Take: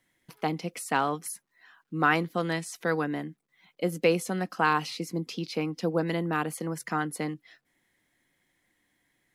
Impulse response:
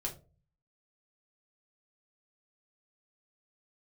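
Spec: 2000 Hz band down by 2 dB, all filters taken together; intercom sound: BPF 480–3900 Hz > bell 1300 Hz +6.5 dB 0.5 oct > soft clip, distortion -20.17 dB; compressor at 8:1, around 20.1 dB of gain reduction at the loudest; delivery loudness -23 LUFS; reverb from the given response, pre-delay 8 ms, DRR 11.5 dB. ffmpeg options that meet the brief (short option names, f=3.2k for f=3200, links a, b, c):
-filter_complex "[0:a]equalizer=f=2k:t=o:g=-7,acompressor=threshold=-40dB:ratio=8,asplit=2[a][b];[1:a]atrim=start_sample=2205,adelay=8[c];[b][c]afir=irnorm=-1:irlink=0,volume=-12.5dB[d];[a][d]amix=inputs=2:normalize=0,highpass=480,lowpass=3.9k,equalizer=f=1.3k:t=o:w=0.5:g=6.5,asoftclip=threshold=-31dB,volume=25dB"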